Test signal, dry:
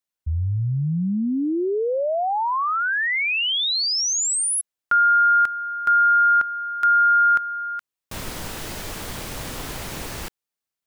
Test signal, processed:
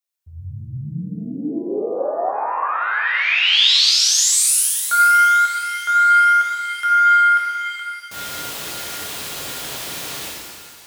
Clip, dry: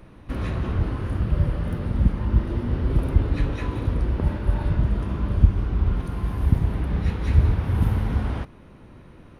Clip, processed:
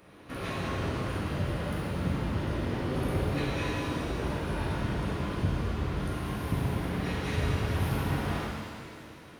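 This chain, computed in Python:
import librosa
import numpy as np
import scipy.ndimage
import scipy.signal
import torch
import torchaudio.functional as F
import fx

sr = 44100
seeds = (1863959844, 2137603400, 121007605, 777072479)

y = fx.highpass(x, sr, hz=150.0, slope=6)
y = fx.tilt_eq(y, sr, slope=1.5)
y = fx.echo_thinned(y, sr, ms=565, feedback_pct=66, hz=780.0, wet_db=-18)
y = fx.dynamic_eq(y, sr, hz=3500.0, q=2.0, threshold_db=-41.0, ratio=4.0, max_db=6)
y = fx.rev_shimmer(y, sr, seeds[0], rt60_s=1.8, semitones=7, shimmer_db=-8, drr_db=-4.5)
y = F.gain(torch.from_numpy(y), -5.0).numpy()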